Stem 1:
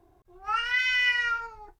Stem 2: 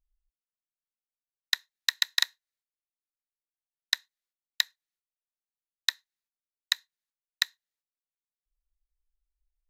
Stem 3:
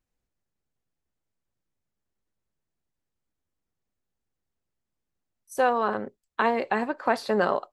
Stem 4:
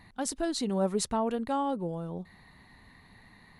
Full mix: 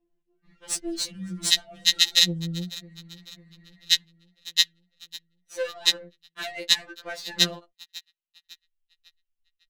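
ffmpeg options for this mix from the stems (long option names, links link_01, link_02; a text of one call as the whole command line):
ffmpeg -i stem1.wav -i stem2.wav -i stem3.wav -i stem4.wav -filter_complex "[0:a]asoftclip=type=tanh:threshold=-32dB,asplit=2[link_01][link_02];[link_02]highpass=frequency=720:poles=1,volume=17dB,asoftclip=type=tanh:threshold=-32dB[link_03];[link_01][link_03]amix=inputs=2:normalize=0,lowpass=frequency=1600:poles=1,volume=-6dB,volume=-14.5dB[link_04];[1:a]equalizer=frequency=2900:width=2.5:gain=14.5,volume=2.5dB,asplit=2[link_05][link_06];[link_06]volume=-20dB[link_07];[2:a]volume=2dB[link_08];[3:a]equalizer=frequency=250:width=7.6:gain=13.5,adelay=450,volume=3dB,asplit=2[link_09][link_10];[link_10]volume=-18dB[link_11];[link_07][link_11]amix=inputs=2:normalize=0,aecho=0:1:551|1102|1653|2204|2755|3306|3857:1|0.49|0.24|0.118|0.0576|0.0282|0.0138[link_12];[link_04][link_05][link_08][link_09][link_12]amix=inputs=5:normalize=0,firequalizer=gain_entry='entry(100,0);entry(890,-20);entry(2000,-1);entry(6100,10)':delay=0.05:min_phase=1,adynamicsmooth=sensitivity=4.5:basefreq=1800,afftfilt=real='re*2.83*eq(mod(b,8),0)':imag='im*2.83*eq(mod(b,8),0)':win_size=2048:overlap=0.75" out.wav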